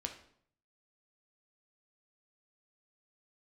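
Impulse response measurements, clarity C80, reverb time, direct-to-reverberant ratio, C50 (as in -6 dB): 13.0 dB, 0.60 s, 3.5 dB, 9.5 dB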